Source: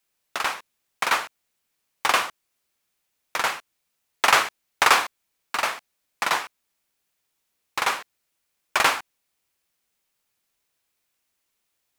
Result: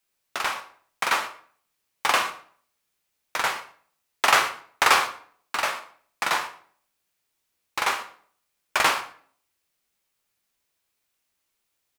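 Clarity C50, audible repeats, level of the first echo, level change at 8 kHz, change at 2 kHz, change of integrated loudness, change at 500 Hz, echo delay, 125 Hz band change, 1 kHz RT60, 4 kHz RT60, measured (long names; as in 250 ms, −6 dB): 11.5 dB, 1, −20.5 dB, −1.0 dB, −1.0 dB, −1.0 dB, −0.5 dB, 118 ms, −0.5 dB, 0.50 s, 0.40 s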